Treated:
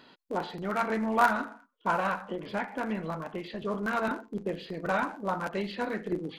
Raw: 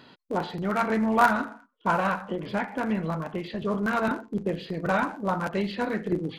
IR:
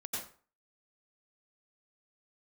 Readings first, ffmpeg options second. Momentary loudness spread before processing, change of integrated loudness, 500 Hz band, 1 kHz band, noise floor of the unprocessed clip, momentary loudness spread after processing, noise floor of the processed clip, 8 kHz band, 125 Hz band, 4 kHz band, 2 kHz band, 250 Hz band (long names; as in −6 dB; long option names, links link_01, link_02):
9 LU, −4.0 dB, −3.5 dB, −3.0 dB, −60 dBFS, 10 LU, −64 dBFS, can't be measured, −7.5 dB, −3.0 dB, −3.0 dB, −6.0 dB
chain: -af "equalizer=frequency=110:width_type=o:width=1.5:gain=-8,volume=-3dB"